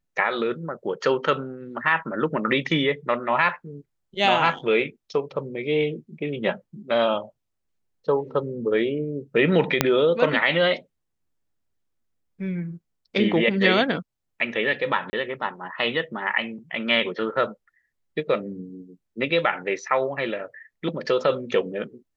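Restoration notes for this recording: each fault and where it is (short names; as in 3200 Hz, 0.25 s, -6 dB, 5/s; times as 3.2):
9.81 pop -1 dBFS
15.1–15.13 gap 30 ms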